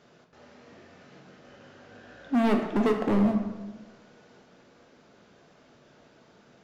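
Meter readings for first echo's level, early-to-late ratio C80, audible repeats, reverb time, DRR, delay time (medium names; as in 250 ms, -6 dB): no echo, 8.5 dB, no echo, 1.2 s, 3.0 dB, no echo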